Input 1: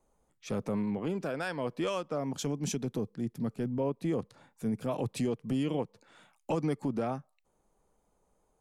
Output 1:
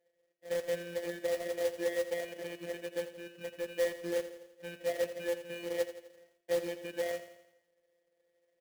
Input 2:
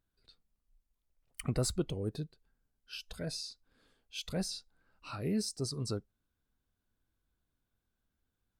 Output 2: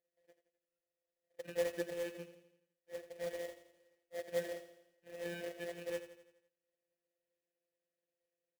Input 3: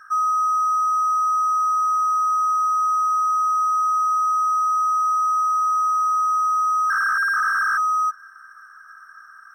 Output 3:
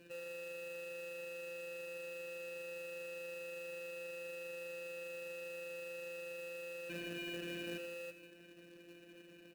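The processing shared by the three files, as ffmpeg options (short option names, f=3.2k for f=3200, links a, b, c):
-filter_complex "[0:a]bandreject=f=60:t=h:w=6,bandreject=f=120:t=h:w=6,bandreject=f=180:t=h:w=6,bandreject=f=240:t=h:w=6,acompressor=threshold=-22dB:ratio=6,alimiter=limit=-23.5dB:level=0:latency=1:release=24,acrusher=samples=33:mix=1:aa=0.000001,afftfilt=real='hypot(re,im)*cos(PI*b)':imag='0':win_size=1024:overlap=0.75,asplit=3[a][b][c];[a]bandpass=f=530:t=q:w=8,volume=0dB[d];[b]bandpass=f=1.84k:t=q:w=8,volume=-6dB[e];[c]bandpass=f=2.48k:t=q:w=8,volume=-9dB[f];[d][e][f]amix=inputs=3:normalize=0,acrusher=bits=3:mode=log:mix=0:aa=0.000001,aecho=1:1:84|168|252|336|420|504:0.251|0.133|0.0706|0.0374|0.0198|0.0105,volume=10.5dB"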